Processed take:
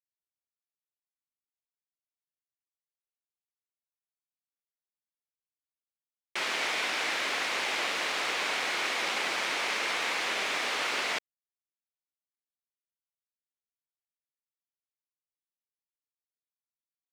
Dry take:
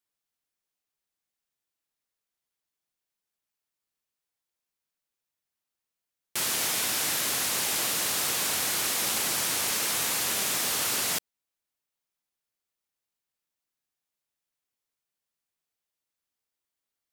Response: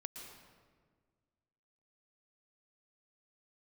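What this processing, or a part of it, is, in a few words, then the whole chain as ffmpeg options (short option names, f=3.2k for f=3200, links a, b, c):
pocket radio on a weak battery: -af "highpass=370,lowpass=3.2k,aeval=exprs='sgn(val(0))*max(abs(val(0))-0.0015,0)':c=same,equalizer=f=2.2k:t=o:w=0.4:g=4.5,volume=3dB"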